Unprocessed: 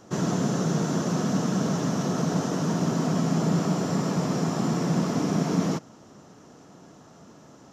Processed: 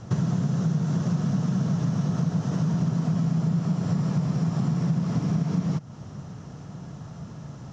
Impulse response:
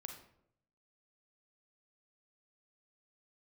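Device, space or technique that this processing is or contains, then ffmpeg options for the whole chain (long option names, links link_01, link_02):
jukebox: -af "lowpass=6200,lowshelf=frequency=200:width_type=q:width=1.5:gain=12.5,acompressor=threshold=-27dB:ratio=5,volume=4dB"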